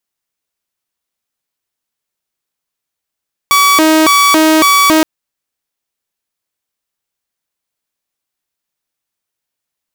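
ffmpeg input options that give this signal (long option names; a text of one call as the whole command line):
ffmpeg -f lavfi -i "aevalsrc='0.668*(2*mod((727.5*t+412.5/1.8*(0.5-abs(mod(1.8*t,1)-0.5))),1)-1)':duration=1.52:sample_rate=44100" out.wav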